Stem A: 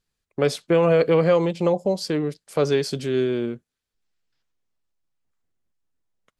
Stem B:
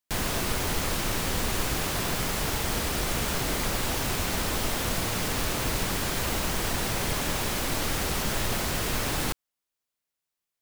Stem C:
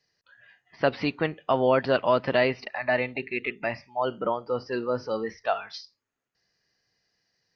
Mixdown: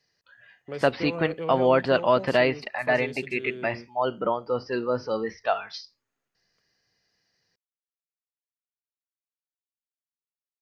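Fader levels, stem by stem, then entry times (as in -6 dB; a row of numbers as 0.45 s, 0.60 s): -15.0 dB, mute, +1.5 dB; 0.30 s, mute, 0.00 s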